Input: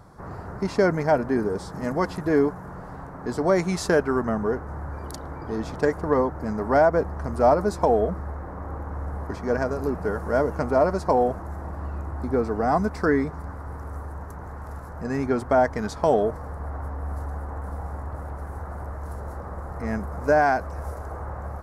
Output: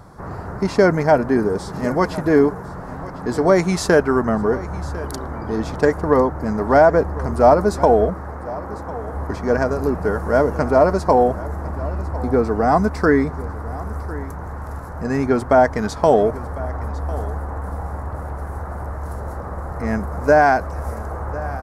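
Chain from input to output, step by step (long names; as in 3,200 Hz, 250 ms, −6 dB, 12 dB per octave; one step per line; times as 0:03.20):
0:08.10–0:09.15: high-pass filter 170 Hz 6 dB per octave
single-tap delay 1,051 ms −17.5 dB
level +6 dB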